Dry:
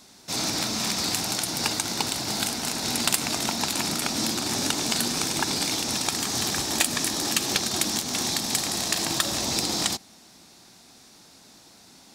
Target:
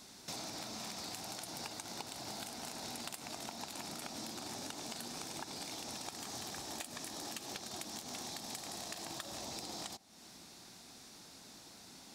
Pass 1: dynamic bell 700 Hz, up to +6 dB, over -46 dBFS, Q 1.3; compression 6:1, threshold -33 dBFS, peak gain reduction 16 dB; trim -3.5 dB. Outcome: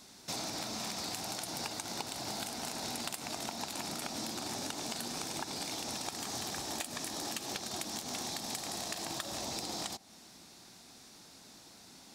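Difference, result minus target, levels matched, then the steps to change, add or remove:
compression: peak gain reduction -5.5 dB
change: compression 6:1, threshold -39.5 dBFS, peak gain reduction 21.5 dB

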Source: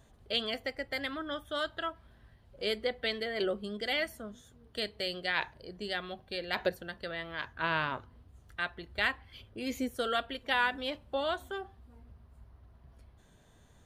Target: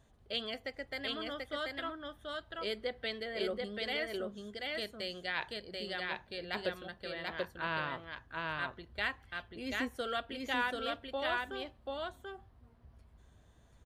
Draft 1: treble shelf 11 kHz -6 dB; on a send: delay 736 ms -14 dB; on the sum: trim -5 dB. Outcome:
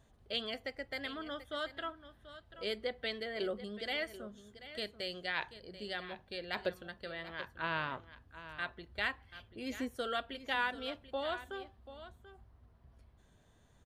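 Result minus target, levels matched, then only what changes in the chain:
echo-to-direct -11.5 dB
change: delay 736 ms -2.5 dB

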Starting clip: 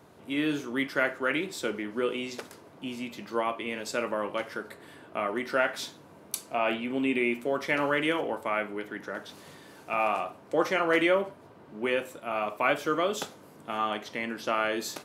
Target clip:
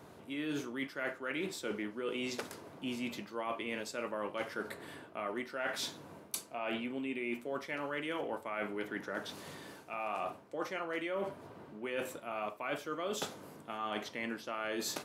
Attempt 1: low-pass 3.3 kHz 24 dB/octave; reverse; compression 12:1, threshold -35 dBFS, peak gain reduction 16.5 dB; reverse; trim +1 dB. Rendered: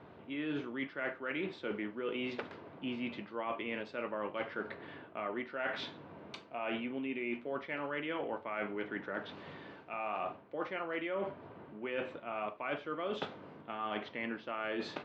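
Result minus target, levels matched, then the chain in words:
4 kHz band -3.0 dB
reverse; compression 12:1, threshold -35 dBFS, peak gain reduction 16.5 dB; reverse; trim +1 dB

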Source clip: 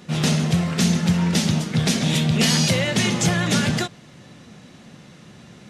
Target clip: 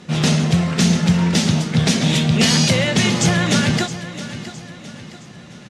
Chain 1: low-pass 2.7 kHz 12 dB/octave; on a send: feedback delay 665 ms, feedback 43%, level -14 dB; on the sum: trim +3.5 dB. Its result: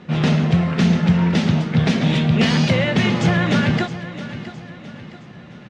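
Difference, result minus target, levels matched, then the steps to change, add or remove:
8 kHz band -14.5 dB
change: low-pass 9.2 kHz 12 dB/octave

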